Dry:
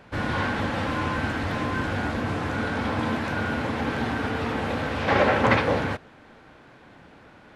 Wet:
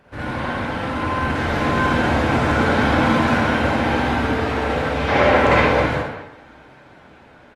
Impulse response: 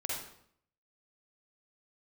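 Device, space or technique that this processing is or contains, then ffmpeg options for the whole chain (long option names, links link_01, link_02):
speakerphone in a meeting room: -filter_complex "[1:a]atrim=start_sample=2205[link_01];[0:a][link_01]afir=irnorm=-1:irlink=0,asplit=2[link_02][link_03];[link_03]adelay=200,highpass=300,lowpass=3400,asoftclip=type=hard:threshold=-12.5dB,volume=-9dB[link_04];[link_02][link_04]amix=inputs=2:normalize=0,dynaudnorm=framelen=450:gausssize=7:maxgain=10dB,volume=-1dB" -ar 48000 -c:a libopus -b:a 32k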